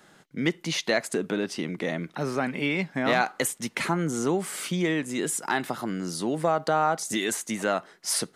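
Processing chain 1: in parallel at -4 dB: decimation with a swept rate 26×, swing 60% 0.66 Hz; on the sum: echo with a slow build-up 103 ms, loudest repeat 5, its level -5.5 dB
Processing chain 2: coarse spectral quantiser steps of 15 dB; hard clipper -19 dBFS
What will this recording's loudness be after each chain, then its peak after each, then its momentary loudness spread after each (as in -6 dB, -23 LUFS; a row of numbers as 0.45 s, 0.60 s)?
-19.5 LUFS, -28.5 LUFS; -4.5 dBFS, -19.0 dBFS; 2 LU, 5 LU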